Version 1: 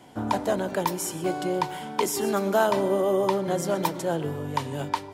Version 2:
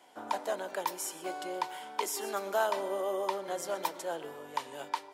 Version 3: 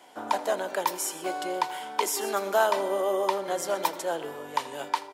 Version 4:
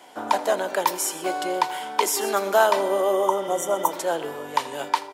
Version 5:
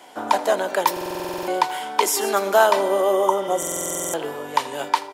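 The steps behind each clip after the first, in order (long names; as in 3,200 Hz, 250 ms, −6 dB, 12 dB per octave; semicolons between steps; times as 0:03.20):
high-pass filter 530 Hz 12 dB per octave; level −6 dB
single-tap delay 81 ms −20 dB; level +6.5 dB
healed spectral selection 0:03.21–0:03.90, 1,400–5,700 Hz before; level +5 dB
buffer that repeats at 0:00.92/0:03.58, samples 2,048, times 11; level +2.5 dB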